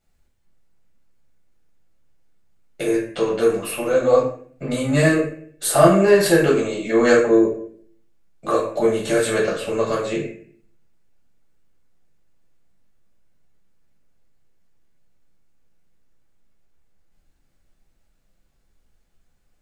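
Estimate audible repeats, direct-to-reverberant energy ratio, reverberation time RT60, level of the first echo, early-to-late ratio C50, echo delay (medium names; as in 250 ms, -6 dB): no echo, -4.5 dB, 0.55 s, no echo, 5.0 dB, no echo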